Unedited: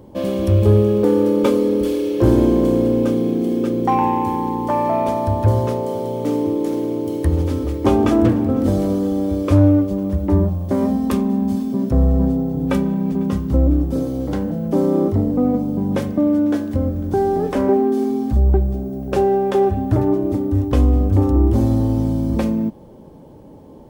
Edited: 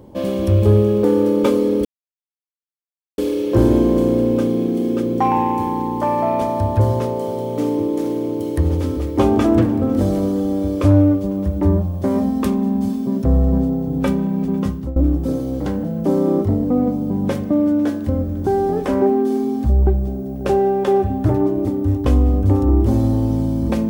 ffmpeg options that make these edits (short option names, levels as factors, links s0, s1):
-filter_complex "[0:a]asplit=3[s0][s1][s2];[s0]atrim=end=1.85,asetpts=PTS-STARTPTS,afade=t=out:st=1.846:d=0.004:c=hsin,apad=pad_dur=1.33[s3];[s1]atrim=start=1.85:end=13.63,asetpts=PTS-STARTPTS,afade=t=in:d=0.004:c=hsin,afade=t=out:st=11.48:d=0.3:silence=0.11885[s4];[s2]atrim=start=13.63,asetpts=PTS-STARTPTS,afade=t=in:d=0.004:c=hsin:silence=0.11885[s5];[s3][s4][s5]concat=n=3:v=0:a=1"